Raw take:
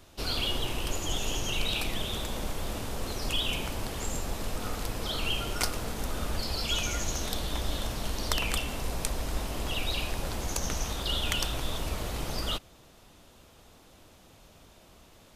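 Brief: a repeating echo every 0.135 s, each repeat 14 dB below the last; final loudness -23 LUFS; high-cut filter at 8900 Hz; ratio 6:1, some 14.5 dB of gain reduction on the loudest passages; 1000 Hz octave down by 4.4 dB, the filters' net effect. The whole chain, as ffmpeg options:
-af "lowpass=8.9k,equalizer=f=1k:t=o:g=-6,acompressor=threshold=-41dB:ratio=6,aecho=1:1:135|270:0.2|0.0399,volume=22dB"

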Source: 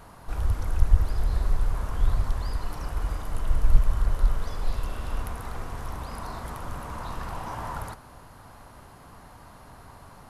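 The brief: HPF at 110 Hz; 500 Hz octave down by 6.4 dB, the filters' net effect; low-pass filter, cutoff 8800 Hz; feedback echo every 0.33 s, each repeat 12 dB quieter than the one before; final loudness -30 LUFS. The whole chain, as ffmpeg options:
-af "highpass=110,lowpass=8.8k,equalizer=f=500:t=o:g=-8.5,aecho=1:1:330|660|990:0.251|0.0628|0.0157,volume=9dB"

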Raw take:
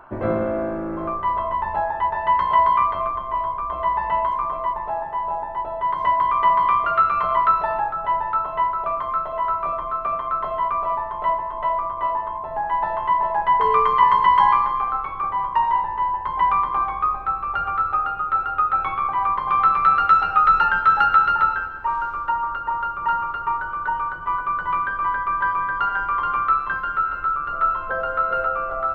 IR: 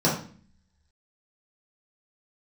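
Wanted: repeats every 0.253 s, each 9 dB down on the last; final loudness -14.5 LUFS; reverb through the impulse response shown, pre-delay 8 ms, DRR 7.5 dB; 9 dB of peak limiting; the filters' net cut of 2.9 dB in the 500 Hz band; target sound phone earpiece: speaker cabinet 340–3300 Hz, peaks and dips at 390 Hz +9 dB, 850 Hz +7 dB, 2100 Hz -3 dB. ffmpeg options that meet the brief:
-filter_complex "[0:a]equalizer=f=500:t=o:g=-7,alimiter=limit=-13.5dB:level=0:latency=1,aecho=1:1:253|506|759|1012:0.355|0.124|0.0435|0.0152,asplit=2[a][b];[1:a]atrim=start_sample=2205,adelay=8[c];[b][c]afir=irnorm=-1:irlink=0,volume=-22.5dB[d];[a][d]amix=inputs=2:normalize=0,highpass=340,equalizer=f=390:t=q:w=4:g=9,equalizer=f=850:t=q:w=4:g=7,equalizer=f=2.1k:t=q:w=4:g=-3,lowpass=f=3.3k:w=0.5412,lowpass=f=3.3k:w=1.3066,volume=5.5dB"

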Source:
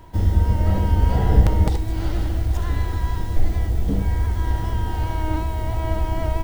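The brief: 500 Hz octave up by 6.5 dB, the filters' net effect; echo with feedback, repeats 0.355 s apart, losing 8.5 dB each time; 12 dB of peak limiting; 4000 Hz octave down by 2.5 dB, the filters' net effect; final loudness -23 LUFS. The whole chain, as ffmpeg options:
-af "equalizer=f=500:t=o:g=8.5,equalizer=f=4k:t=o:g=-3.5,alimiter=limit=-13.5dB:level=0:latency=1,aecho=1:1:355|710|1065|1420:0.376|0.143|0.0543|0.0206,volume=1dB"

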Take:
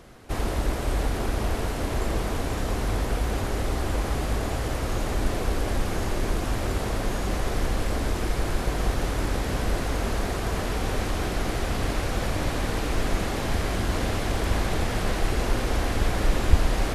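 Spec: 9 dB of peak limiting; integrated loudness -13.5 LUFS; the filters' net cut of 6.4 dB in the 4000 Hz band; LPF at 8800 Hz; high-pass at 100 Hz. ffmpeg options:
-af "highpass=100,lowpass=8.8k,equalizer=f=4k:t=o:g=-8.5,volume=18dB,alimiter=limit=-3.5dB:level=0:latency=1"

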